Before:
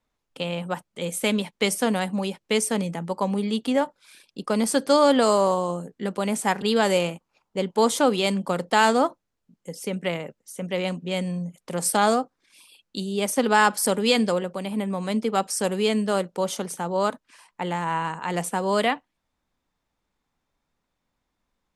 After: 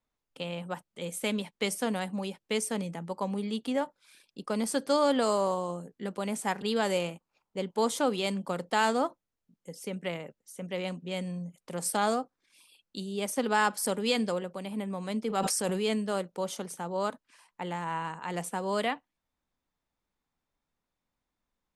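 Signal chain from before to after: 15.27–15.98 sustainer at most 21 dB/s; gain -7.5 dB

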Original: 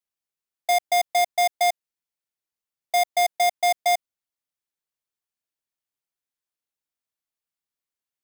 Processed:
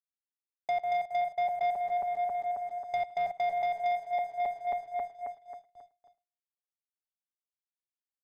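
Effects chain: regenerating reverse delay 0.135 s, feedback 76%, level -8 dB; gate with hold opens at -51 dBFS; LPF 1700 Hz 24 dB/oct; low shelf 200 Hz +12 dB; compressor 8:1, threshold -32 dBFS, peak gain reduction 18 dB; sample leveller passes 2; outdoor echo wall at 18 m, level -20 dB; three-band expander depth 70%; gain -1.5 dB

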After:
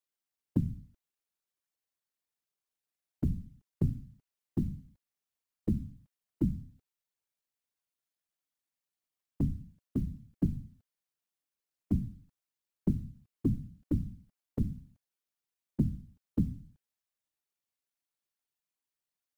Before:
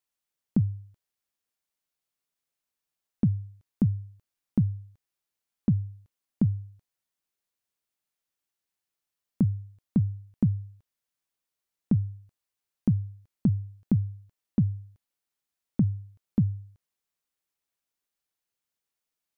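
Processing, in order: companded quantiser 8-bit; whisperiser; gain -6 dB

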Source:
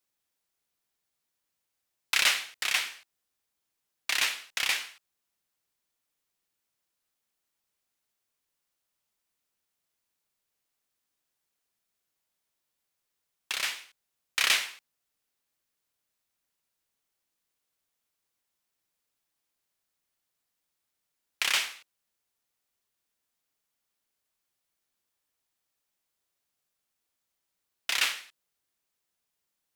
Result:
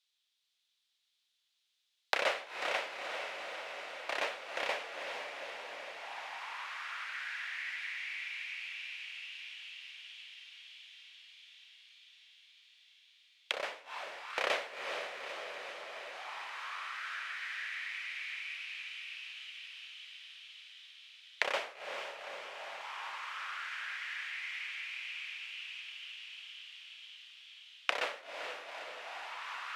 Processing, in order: diffused feedback echo 0.457 s, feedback 76%, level -5.5 dB; auto-wah 550–3600 Hz, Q 3.4, down, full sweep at -34 dBFS; gain +13 dB

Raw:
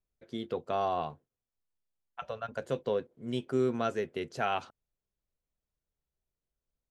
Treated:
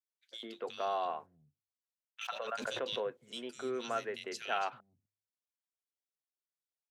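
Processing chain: gate -56 dBFS, range -14 dB; high shelf 2900 Hz +7.5 dB; de-hum 50.49 Hz, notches 2; in parallel at -1 dB: compressor, threshold -40 dBFS, peak gain reduction 15.5 dB; on the sum: weighting filter A; three bands offset in time highs, mids, lows 0.1/0.35 s, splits 170/2400 Hz; 2.21–3.1 backwards sustainer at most 55 dB/s; gain -4.5 dB

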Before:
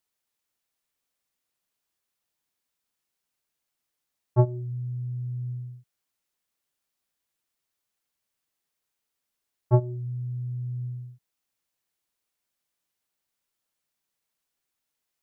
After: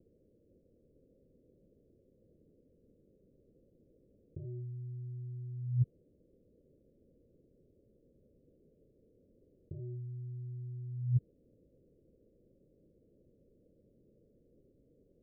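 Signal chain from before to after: sine folder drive 18 dB, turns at -9 dBFS; negative-ratio compressor -32 dBFS, ratio -1; steep low-pass 540 Hz 72 dB/oct; gain -7 dB

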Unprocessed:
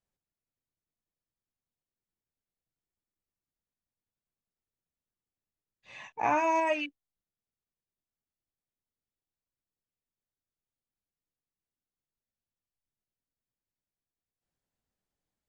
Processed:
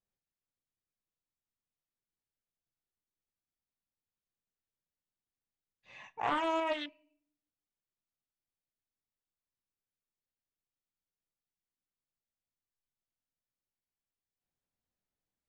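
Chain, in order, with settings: air absorption 55 m; on a send at -17.5 dB: reverb RT60 0.65 s, pre-delay 4 ms; on the sum: Doppler distortion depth 0.41 ms; gain -4.5 dB

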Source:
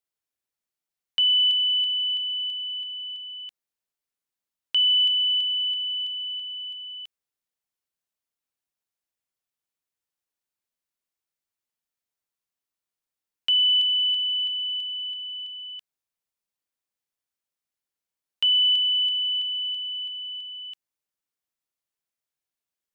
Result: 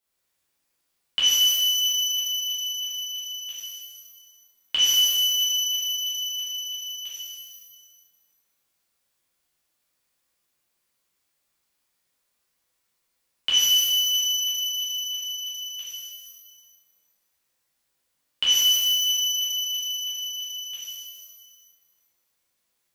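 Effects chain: in parallel at +0.5 dB: compressor, threshold -31 dBFS, peak gain reduction 11.5 dB; on the sum: shimmer reverb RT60 1.3 s, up +12 st, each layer -2 dB, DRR -9 dB; gain -3 dB

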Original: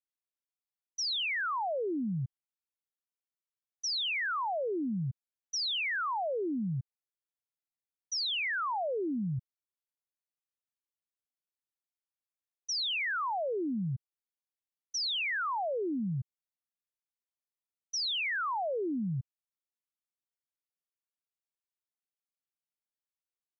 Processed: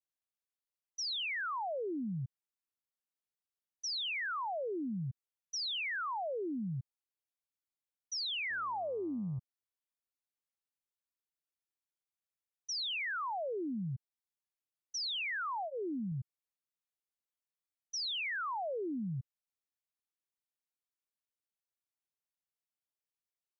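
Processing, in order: 8.49–9.38 buzz 100 Hz, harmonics 12, -58 dBFS -3 dB/oct; 15.62–16.12 notch comb 580 Hz; gain -4.5 dB

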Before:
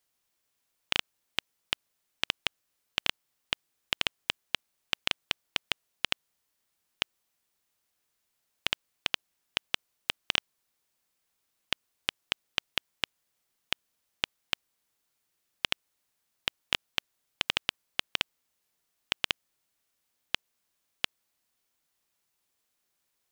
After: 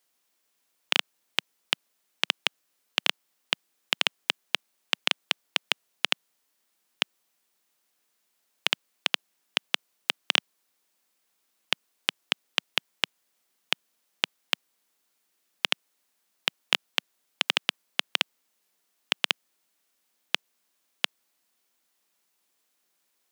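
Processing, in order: HPF 180 Hz 24 dB/oct; gain +4.5 dB

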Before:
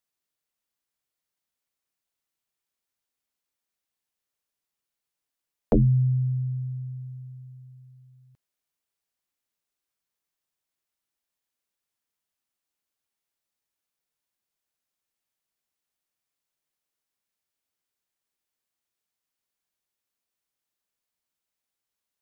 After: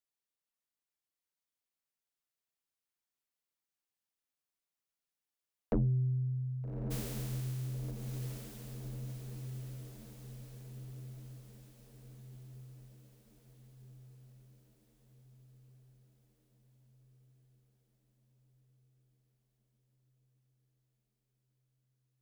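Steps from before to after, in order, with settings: 6.9–7.9 spectral contrast lowered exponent 0.12; soft clip -15.5 dBFS, distortion -19 dB; diffused feedback echo 1.245 s, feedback 60%, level -5 dB; gain -8.5 dB

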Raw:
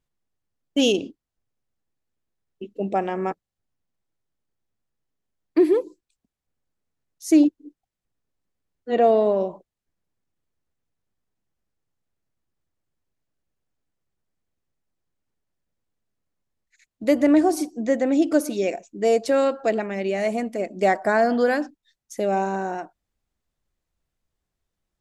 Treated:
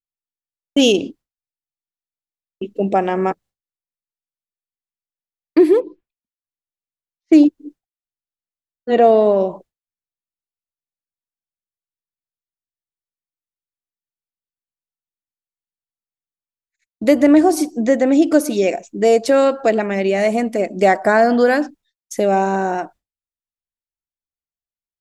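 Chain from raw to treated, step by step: 5.8–7.33 LPF 3000 Hz 24 dB/oct; expander -45 dBFS; in parallel at -1.5 dB: compressor, threshold -26 dBFS, peak gain reduction 14 dB; on the sum: gain +4 dB

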